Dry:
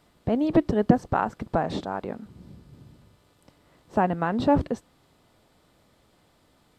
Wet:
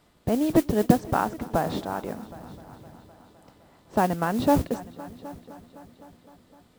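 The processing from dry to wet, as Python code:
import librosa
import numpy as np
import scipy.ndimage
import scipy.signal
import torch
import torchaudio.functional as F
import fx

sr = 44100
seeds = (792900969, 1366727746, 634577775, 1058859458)

y = fx.echo_heads(x, sr, ms=256, heads='all three', feedback_pct=50, wet_db=-23.0)
y = fx.mod_noise(y, sr, seeds[0], snr_db=20)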